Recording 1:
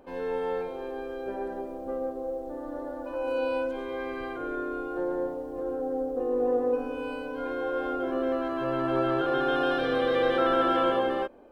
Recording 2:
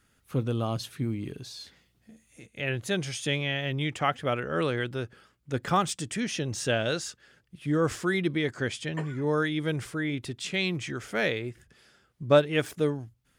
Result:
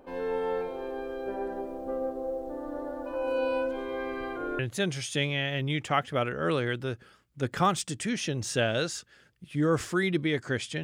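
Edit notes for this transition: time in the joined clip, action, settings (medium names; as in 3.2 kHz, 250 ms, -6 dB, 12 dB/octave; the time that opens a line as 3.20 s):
recording 1
4.59 s: go over to recording 2 from 2.70 s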